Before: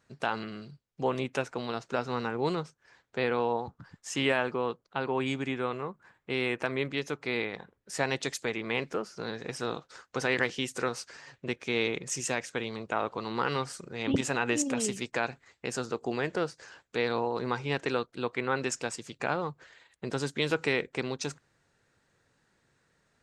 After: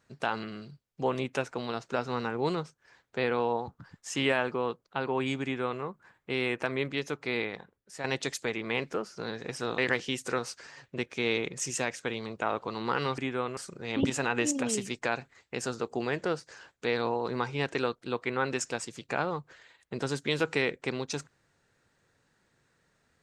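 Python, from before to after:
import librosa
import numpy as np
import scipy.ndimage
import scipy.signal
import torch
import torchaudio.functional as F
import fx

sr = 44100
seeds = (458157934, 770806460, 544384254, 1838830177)

y = fx.edit(x, sr, fx.duplicate(start_s=5.43, length_s=0.39, to_s=13.68),
    fx.fade_out_to(start_s=7.51, length_s=0.53, curve='qua', floor_db=-9.5),
    fx.cut(start_s=9.78, length_s=0.5), tone=tone)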